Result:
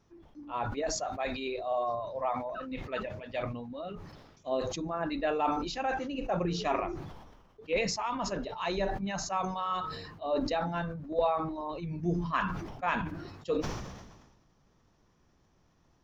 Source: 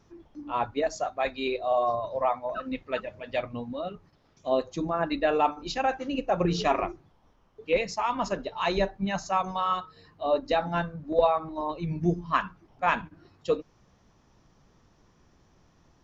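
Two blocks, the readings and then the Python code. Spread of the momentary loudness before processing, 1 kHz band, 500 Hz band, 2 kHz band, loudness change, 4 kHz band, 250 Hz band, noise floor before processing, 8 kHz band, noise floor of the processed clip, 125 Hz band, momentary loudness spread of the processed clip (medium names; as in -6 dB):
9 LU, -5.0 dB, -5.5 dB, -4.0 dB, -4.5 dB, -3.0 dB, -3.0 dB, -63 dBFS, no reading, -67 dBFS, -2.0 dB, 10 LU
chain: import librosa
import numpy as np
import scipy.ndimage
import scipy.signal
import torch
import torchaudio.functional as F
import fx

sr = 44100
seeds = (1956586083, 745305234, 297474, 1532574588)

y = fx.sustainer(x, sr, db_per_s=44.0)
y = F.gain(torch.from_numpy(y), -6.5).numpy()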